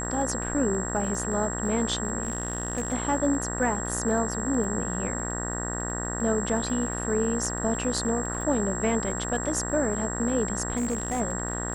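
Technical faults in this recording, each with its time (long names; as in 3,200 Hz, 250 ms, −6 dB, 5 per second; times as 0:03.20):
mains buzz 60 Hz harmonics 32 −33 dBFS
surface crackle 16 per second −34 dBFS
whistle 7,600 Hz −33 dBFS
0:02.23–0:02.94: clipping −23 dBFS
0:10.76–0:11.21: clipping −23.5 dBFS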